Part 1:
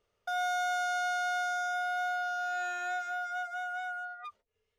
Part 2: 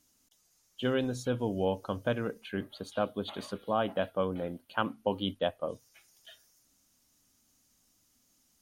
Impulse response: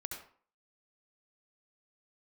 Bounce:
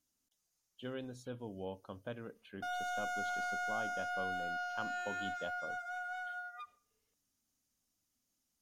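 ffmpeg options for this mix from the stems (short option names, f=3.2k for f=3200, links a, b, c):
-filter_complex "[0:a]asoftclip=type=tanh:threshold=-29dB,adelay=2350,volume=-5.5dB,asplit=2[a][b];[b]volume=-14.5dB[c];[1:a]volume=-13.5dB[d];[2:a]atrim=start_sample=2205[e];[c][e]afir=irnorm=-1:irlink=0[f];[a][d][f]amix=inputs=3:normalize=0"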